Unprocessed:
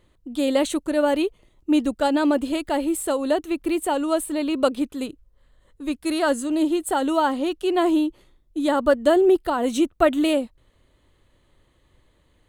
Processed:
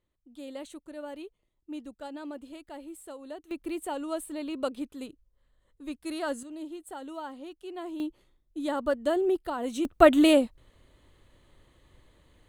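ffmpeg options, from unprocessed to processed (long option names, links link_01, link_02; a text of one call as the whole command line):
ffmpeg -i in.wav -af "asetnsamples=nb_out_samples=441:pad=0,asendcmd='3.51 volume volume -11dB;6.43 volume volume -18.5dB;8 volume volume -9.5dB;9.85 volume volume 1dB',volume=-20dB" out.wav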